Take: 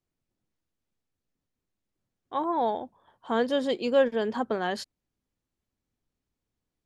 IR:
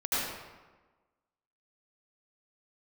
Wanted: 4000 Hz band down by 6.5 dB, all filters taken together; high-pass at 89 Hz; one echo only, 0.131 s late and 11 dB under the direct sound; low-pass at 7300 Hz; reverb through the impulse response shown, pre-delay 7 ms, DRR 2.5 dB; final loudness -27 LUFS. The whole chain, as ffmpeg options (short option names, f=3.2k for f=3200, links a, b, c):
-filter_complex "[0:a]highpass=89,lowpass=7.3k,equalizer=f=4k:t=o:g=-9,aecho=1:1:131:0.282,asplit=2[a][b];[1:a]atrim=start_sample=2205,adelay=7[c];[b][c]afir=irnorm=-1:irlink=0,volume=-12dB[d];[a][d]amix=inputs=2:normalize=0,volume=-1dB"